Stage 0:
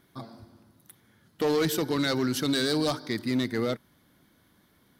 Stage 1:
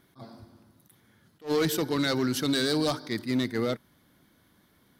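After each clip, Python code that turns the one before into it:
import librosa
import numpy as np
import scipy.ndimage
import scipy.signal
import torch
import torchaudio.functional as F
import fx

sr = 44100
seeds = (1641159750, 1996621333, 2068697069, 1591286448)

y = fx.attack_slew(x, sr, db_per_s=290.0)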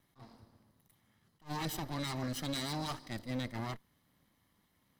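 y = fx.lower_of_two(x, sr, delay_ms=1.0)
y = F.gain(torch.from_numpy(y), -8.5).numpy()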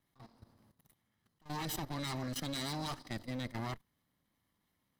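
y = fx.level_steps(x, sr, step_db=14)
y = F.gain(torch.from_numpy(y), 3.5).numpy()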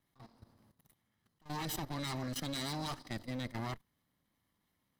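y = x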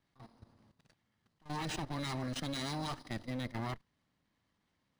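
y = np.interp(np.arange(len(x)), np.arange(len(x))[::3], x[::3])
y = F.gain(torch.from_numpy(y), 1.0).numpy()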